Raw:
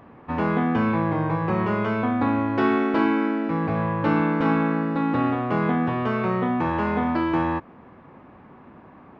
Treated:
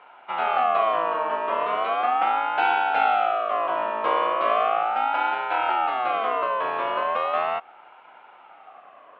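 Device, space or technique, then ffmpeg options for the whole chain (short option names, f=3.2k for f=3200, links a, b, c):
voice changer toy: -af "aeval=exprs='val(0)*sin(2*PI*960*n/s+960*0.2/0.37*sin(2*PI*0.37*n/s))':c=same,highpass=460,equalizer=f=740:t=q:w=4:g=8,equalizer=f=1.1k:t=q:w=4:g=4,equalizer=f=1.9k:t=q:w=4:g=-9,equalizer=f=2.8k:t=q:w=4:g=5,lowpass=f=3.8k:w=0.5412,lowpass=f=3.8k:w=1.3066"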